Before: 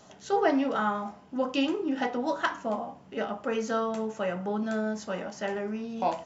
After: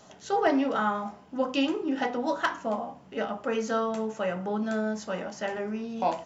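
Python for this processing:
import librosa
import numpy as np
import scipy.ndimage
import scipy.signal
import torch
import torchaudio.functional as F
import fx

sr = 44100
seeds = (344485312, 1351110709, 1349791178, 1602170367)

y = fx.hum_notches(x, sr, base_hz=50, count=8)
y = np.clip(y, -10.0 ** (-15.0 / 20.0), 10.0 ** (-15.0 / 20.0))
y = y * 10.0 ** (1.0 / 20.0)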